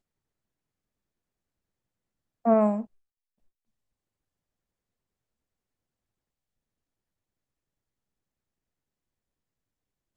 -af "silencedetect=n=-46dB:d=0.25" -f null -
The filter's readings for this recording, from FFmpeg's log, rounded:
silence_start: 0.00
silence_end: 2.45 | silence_duration: 2.45
silence_start: 2.85
silence_end: 10.17 | silence_duration: 7.32